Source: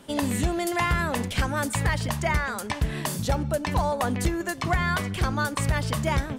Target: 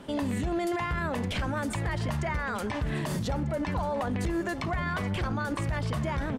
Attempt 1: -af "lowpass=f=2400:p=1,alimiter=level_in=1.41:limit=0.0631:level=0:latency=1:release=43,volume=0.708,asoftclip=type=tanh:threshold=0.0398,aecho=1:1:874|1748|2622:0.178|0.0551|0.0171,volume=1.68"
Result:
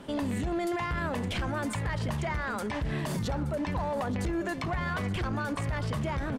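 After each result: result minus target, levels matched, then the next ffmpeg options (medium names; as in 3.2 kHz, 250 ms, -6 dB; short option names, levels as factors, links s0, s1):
saturation: distortion +13 dB; echo 370 ms early
-af "lowpass=f=2400:p=1,alimiter=level_in=1.41:limit=0.0631:level=0:latency=1:release=43,volume=0.708,asoftclip=type=tanh:threshold=0.0944,aecho=1:1:874|1748|2622:0.178|0.0551|0.0171,volume=1.68"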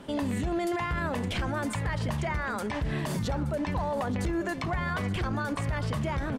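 echo 370 ms early
-af "lowpass=f=2400:p=1,alimiter=level_in=1.41:limit=0.0631:level=0:latency=1:release=43,volume=0.708,asoftclip=type=tanh:threshold=0.0944,aecho=1:1:1244|2488|3732:0.178|0.0551|0.0171,volume=1.68"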